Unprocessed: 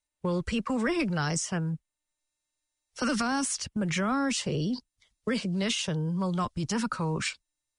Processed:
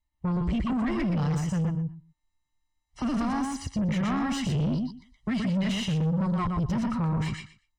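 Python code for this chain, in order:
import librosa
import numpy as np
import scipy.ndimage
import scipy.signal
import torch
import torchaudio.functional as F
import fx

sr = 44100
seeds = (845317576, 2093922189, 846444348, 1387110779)

y = fx.low_shelf(x, sr, hz=130.0, db=11.5)
y = y + 0.95 * np.pad(y, (int(1.0 * sr / 1000.0), 0))[:len(y)]
y = fx.echo_feedback(y, sr, ms=121, feedback_pct=15, wet_db=-4.5)
y = 10.0 ** (-23.0 / 20.0) * np.tanh(y / 10.0 ** (-23.0 / 20.0))
y = fx.lowpass(y, sr, hz=fx.steps((0.0, 1600.0), (3.96, 2700.0), (6.51, 1400.0)), slope=6)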